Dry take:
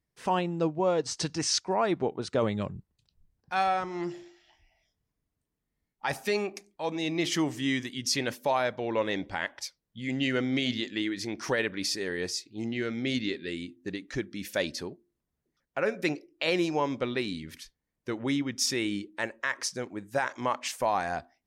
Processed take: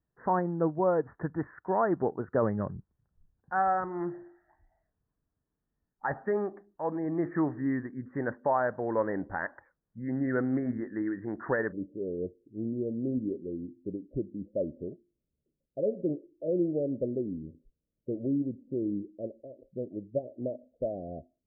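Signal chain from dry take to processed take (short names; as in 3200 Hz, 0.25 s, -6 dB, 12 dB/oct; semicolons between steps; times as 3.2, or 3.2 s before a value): steep low-pass 1800 Hz 96 dB/oct, from 11.71 s 640 Hz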